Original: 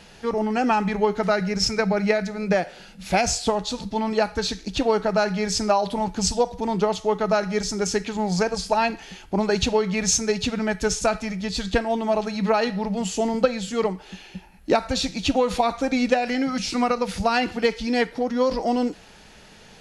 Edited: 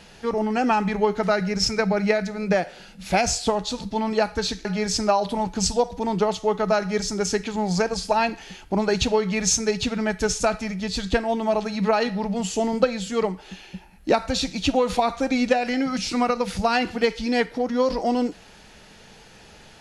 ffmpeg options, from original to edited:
ffmpeg -i in.wav -filter_complex "[0:a]asplit=2[link_01][link_02];[link_01]atrim=end=4.652[link_03];[link_02]atrim=start=5.258[link_04];[link_03][link_04]acrossfade=duration=0.004:curve1=hsin:curve2=hsin" out.wav

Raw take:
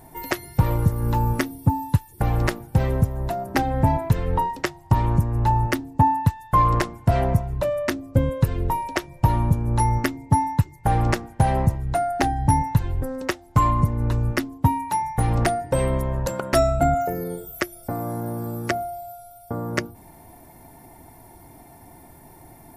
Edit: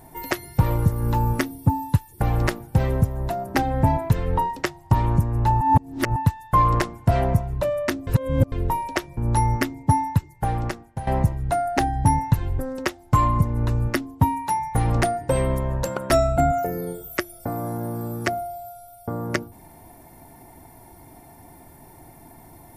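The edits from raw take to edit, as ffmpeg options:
ffmpeg -i in.wav -filter_complex "[0:a]asplit=7[link_01][link_02][link_03][link_04][link_05][link_06][link_07];[link_01]atrim=end=5.612[link_08];[link_02]atrim=start=5.608:end=6.162,asetpts=PTS-STARTPTS,areverse[link_09];[link_03]atrim=start=6.158:end=8.072[link_10];[link_04]atrim=start=8.068:end=8.522,asetpts=PTS-STARTPTS,areverse[link_11];[link_05]atrim=start=8.518:end=9.172[link_12];[link_06]atrim=start=9.598:end=11.5,asetpts=PTS-STARTPTS,afade=type=out:start_time=0.852:duration=1.05:silence=0.177828[link_13];[link_07]atrim=start=11.5,asetpts=PTS-STARTPTS,afade=type=in:duration=0.004:curve=hsin:silence=0.177828[link_14];[link_08][link_09]acrossfade=duration=0.004:curve1=hsin:curve2=hsin[link_15];[link_15][link_10]acrossfade=duration=0.004:curve1=hsin:curve2=hsin[link_16];[link_16][link_11]acrossfade=duration=0.004:curve1=hsin:curve2=hsin[link_17];[link_17][link_12]acrossfade=duration=0.004:curve1=hsin:curve2=hsin[link_18];[link_13][link_14]concat=n=2:v=0:a=1[link_19];[link_18][link_19]acrossfade=duration=0.004:curve1=hsin:curve2=hsin" out.wav

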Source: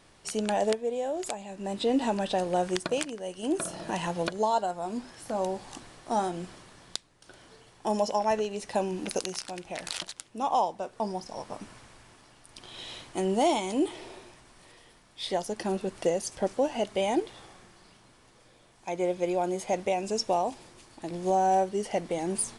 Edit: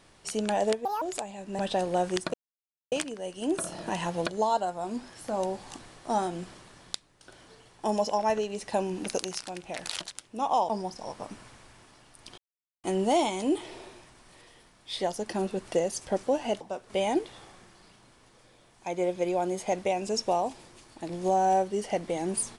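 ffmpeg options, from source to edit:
ffmpeg -i in.wav -filter_complex "[0:a]asplit=10[link_01][link_02][link_03][link_04][link_05][link_06][link_07][link_08][link_09][link_10];[link_01]atrim=end=0.854[link_11];[link_02]atrim=start=0.85:end=1.13,asetpts=PTS-STARTPTS,asetrate=73647,aresample=44100,atrim=end_sample=7394,asetpts=PTS-STARTPTS[link_12];[link_03]atrim=start=1.126:end=1.702[link_13];[link_04]atrim=start=2.178:end=2.93,asetpts=PTS-STARTPTS,afade=type=out:start_time=0.748:duration=0.004:curve=hsin,apad=pad_dur=0.58[link_14];[link_05]atrim=start=2.93:end=10.702,asetpts=PTS-STARTPTS,afade=type=in:duration=0.004:curve=hsin[link_15];[link_06]atrim=start=10.988:end=12.68,asetpts=PTS-STARTPTS,afade=type=out:start_time=1.688:duration=0.004:curve=hsin[link_16];[link_07]atrim=start=12.68:end=13.14,asetpts=PTS-STARTPTS,volume=0[link_17];[link_08]atrim=start=13.14:end=16.912,asetpts=PTS-STARTPTS,afade=type=in:duration=0.004:curve=hsin[link_18];[link_09]atrim=start=10.698:end=10.992[link_19];[link_10]atrim=start=16.908[link_20];[link_11][link_12]acrossfade=duration=0.004:curve1=hsin:curve2=hsin[link_21];[link_21][link_13]acrossfade=duration=0.004:curve1=hsin:curve2=hsin[link_22];[link_14][link_15]concat=n=2:v=0:a=1[link_23];[link_22][link_23]acrossfade=duration=0.004:curve1=hsin:curve2=hsin[link_24];[link_16][link_17][link_18]concat=n=3:v=0:a=1[link_25];[link_24][link_25]acrossfade=duration=0.004:curve1=hsin:curve2=hsin[link_26];[link_26][link_19]acrossfade=duration=0.004:curve1=hsin:curve2=hsin[link_27];[link_27][link_20]acrossfade=duration=0.004:curve1=hsin:curve2=hsin" out.wav

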